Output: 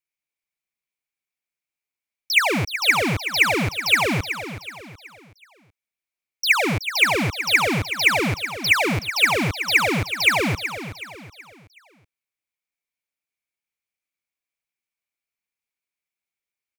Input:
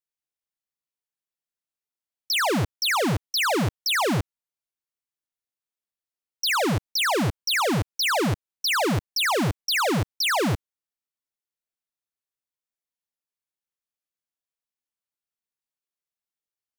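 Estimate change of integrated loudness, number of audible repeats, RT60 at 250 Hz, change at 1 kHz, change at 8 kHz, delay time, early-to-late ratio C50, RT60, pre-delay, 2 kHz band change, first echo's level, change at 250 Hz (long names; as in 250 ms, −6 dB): +4.0 dB, 3, no reverb audible, +1.0 dB, +0.5 dB, 374 ms, no reverb audible, no reverb audible, no reverb audible, +8.5 dB, −11.0 dB, +0.5 dB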